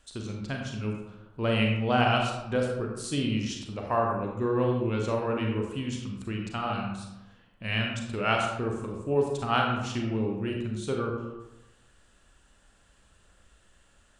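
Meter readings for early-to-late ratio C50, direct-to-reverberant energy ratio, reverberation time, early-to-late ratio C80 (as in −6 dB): 2.5 dB, 0.0 dB, 1.0 s, 5.0 dB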